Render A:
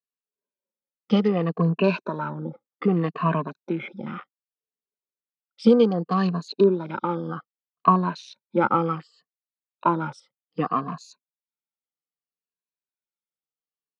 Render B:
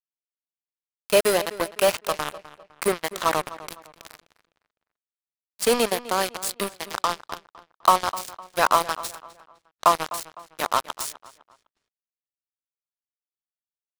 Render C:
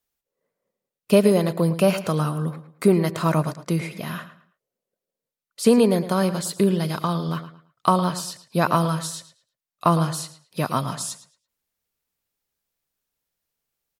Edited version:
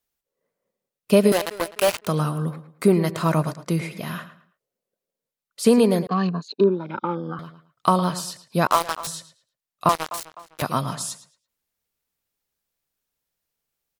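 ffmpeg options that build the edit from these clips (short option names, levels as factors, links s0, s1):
-filter_complex "[1:a]asplit=3[s0][s1][s2];[2:a]asplit=5[s3][s4][s5][s6][s7];[s3]atrim=end=1.322[s8];[s0]atrim=start=1.318:end=2.072[s9];[s4]atrim=start=2.068:end=6.072[s10];[0:a]atrim=start=6.068:end=7.392[s11];[s5]atrim=start=7.388:end=8.672[s12];[s1]atrim=start=8.668:end=9.072[s13];[s6]atrim=start=9.068:end=9.892[s14];[s2]atrim=start=9.888:end=10.622[s15];[s7]atrim=start=10.618[s16];[s8][s9]acrossfade=d=0.004:c1=hsin:c2=hsin[s17];[s17][s10]acrossfade=d=0.004:c1=hsin:c2=hsin[s18];[s18][s11]acrossfade=d=0.004:c1=hsin:c2=hsin[s19];[s19][s12]acrossfade=d=0.004:c1=hsin:c2=hsin[s20];[s20][s13]acrossfade=d=0.004:c1=hsin:c2=hsin[s21];[s21][s14]acrossfade=d=0.004:c1=hsin:c2=hsin[s22];[s22][s15]acrossfade=d=0.004:c1=hsin:c2=hsin[s23];[s23][s16]acrossfade=d=0.004:c1=hsin:c2=hsin"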